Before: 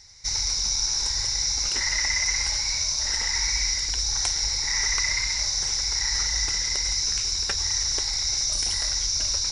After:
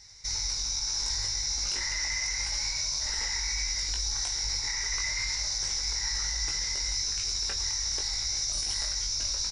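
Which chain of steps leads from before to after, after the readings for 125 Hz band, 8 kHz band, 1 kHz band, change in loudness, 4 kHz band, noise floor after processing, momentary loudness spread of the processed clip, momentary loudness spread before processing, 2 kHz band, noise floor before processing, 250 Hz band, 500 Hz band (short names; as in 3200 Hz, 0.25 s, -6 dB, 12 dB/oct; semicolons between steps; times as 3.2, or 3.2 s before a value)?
-4.5 dB, -5.5 dB, -5.5 dB, -5.5 dB, -5.5 dB, -32 dBFS, 1 LU, 1 LU, -6.0 dB, -28 dBFS, n/a, -6.0 dB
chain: limiter -20 dBFS, peak gain reduction 8.5 dB; doubler 20 ms -4 dB; gain -3 dB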